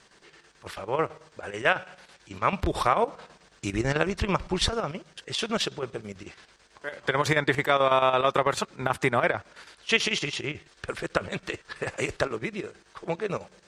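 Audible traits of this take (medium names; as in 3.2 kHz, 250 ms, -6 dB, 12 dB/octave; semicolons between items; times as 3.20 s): chopped level 9.1 Hz, depth 60%, duty 70%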